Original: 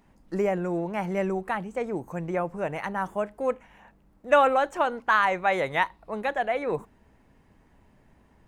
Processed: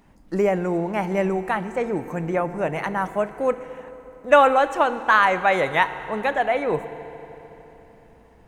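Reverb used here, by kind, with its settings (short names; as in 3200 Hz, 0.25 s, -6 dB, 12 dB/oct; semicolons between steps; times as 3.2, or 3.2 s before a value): FDN reverb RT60 3.7 s, high-frequency decay 0.85×, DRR 11.5 dB; gain +5 dB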